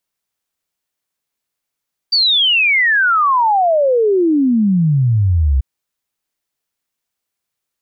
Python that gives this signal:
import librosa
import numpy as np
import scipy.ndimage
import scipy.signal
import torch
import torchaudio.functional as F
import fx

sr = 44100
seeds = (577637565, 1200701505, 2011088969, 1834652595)

y = fx.ess(sr, length_s=3.49, from_hz=4700.0, to_hz=63.0, level_db=-10.0)